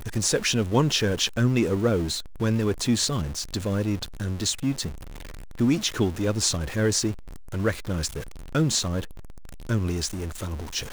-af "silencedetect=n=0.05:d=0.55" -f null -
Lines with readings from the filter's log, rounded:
silence_start: 4.88
silence_end: 5.60 | silence_duration: 0.72
silence_start: 9.00
silence_end: 9.69 | silence_duration: 0.69